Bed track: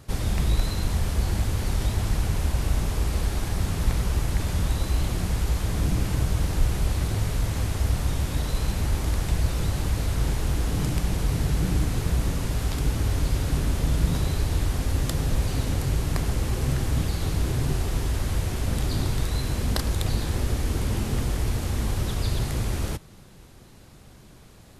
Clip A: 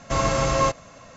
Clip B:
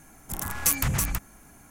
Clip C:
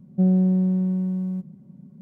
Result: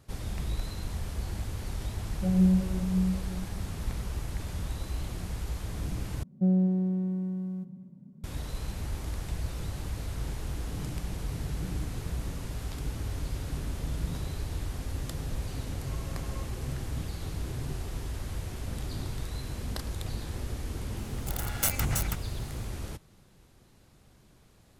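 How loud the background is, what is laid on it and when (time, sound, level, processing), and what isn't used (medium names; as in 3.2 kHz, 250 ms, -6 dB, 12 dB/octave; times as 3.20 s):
bed track -10 dB
2.04 s: add C -3 dB + three-phase chorus
6.23 s: replace with C -5.5 dB + echo from a far wall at 43 m, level -15 dB
15.75 s: add A -16.5 dB + compression 2:1, threshold -38 dBFS
20.97 s: add B -3 dB + comb filter that takes the minimum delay 1.4 ms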